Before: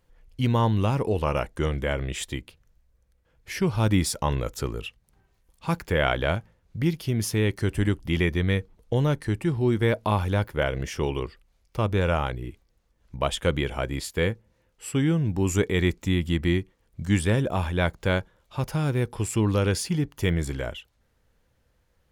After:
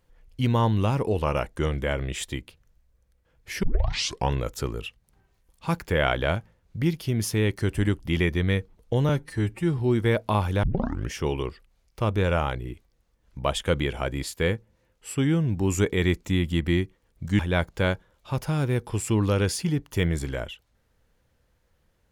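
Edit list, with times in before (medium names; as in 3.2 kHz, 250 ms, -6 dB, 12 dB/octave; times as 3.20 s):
3.63 s: tape start 0.69 s
9.09–9.55 s: stretch 1.5×
10.40 s: tape start 0.49 s
17.16–17.65 s: delete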